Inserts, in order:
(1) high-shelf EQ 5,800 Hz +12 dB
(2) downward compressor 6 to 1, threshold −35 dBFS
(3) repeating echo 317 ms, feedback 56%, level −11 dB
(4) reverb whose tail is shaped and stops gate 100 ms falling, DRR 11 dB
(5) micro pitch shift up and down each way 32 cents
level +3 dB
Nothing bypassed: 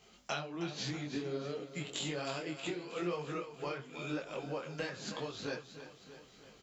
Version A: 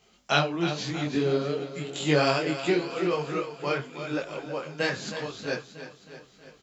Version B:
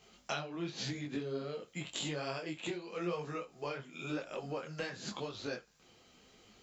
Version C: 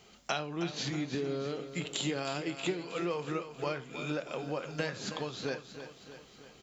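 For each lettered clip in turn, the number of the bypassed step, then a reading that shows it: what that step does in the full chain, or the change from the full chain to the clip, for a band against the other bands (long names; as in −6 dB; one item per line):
2, average gain reduction 8.5 dB
3, change in momentary loudness spread −8 LU
5, change in integrated loudness +4.0 LU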